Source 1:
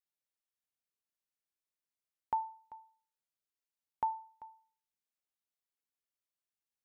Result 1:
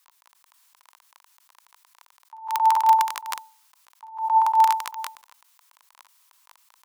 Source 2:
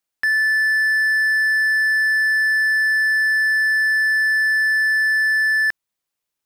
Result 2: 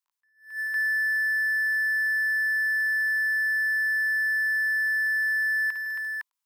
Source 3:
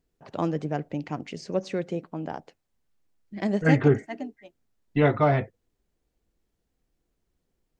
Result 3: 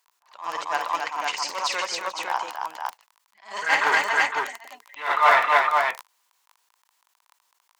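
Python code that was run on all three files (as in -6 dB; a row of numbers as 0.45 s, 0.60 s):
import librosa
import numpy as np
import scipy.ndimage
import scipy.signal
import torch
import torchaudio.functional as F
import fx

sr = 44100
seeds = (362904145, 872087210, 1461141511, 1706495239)

p1 = np.clip(10.0 ** (20.0 / 20.0) * x, -1.0, 1.0) / 10.0 ** (20.0 / 20.0)
p2 = x + (p1 * librosa.db_to_amplitude(-4.0))
p3 = fx.tilt_shelf(p2, sr, db=-8.0, hz=1500.0)
p4 = p3 + fx.echo_multitap(p3, sr, ms=(53, 147, 158, 271, 437, 508), db=(-7.5, -18.5, -15.5, -4.5, -16.5, -3.0), dry=0)
p5 = fx.dmg_crackle(p4, sr, seeds[0], per_s=16.0, level_db=-23.0)
p6 = fx.highpass_res(p5, sr, hz=990.0, q=5.3)
p7 = fx.attack_slew(p6, sr, db_per_s=150.0)
y = p7 * 10.0 ** (-26 / 20.0) / np.sqrt(np.mean(np.square(p7)))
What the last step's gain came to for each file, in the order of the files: +18.0 dB, -18.5 dB, +4.0 dB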